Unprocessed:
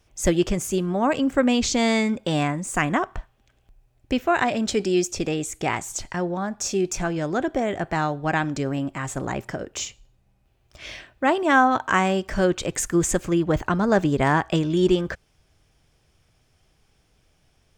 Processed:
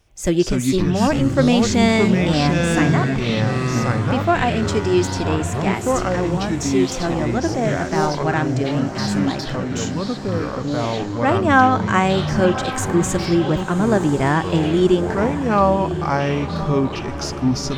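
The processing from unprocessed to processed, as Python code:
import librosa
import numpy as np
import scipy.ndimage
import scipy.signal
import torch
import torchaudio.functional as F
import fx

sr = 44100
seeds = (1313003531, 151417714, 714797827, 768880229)

y = fx.echo_pitch(x, sr, ms=159, semitones=-5, count=3, db_per_echo=-3.0)
y = fx.hpss(y, sr, part='percussive', gain_db=-6)
y = fx.echo_diffused(y, sr, ms=1063, feedback_pct=45, wet_db=-11.5)
y = F.gain(torch.from_numpy(y), 4.0).numpy()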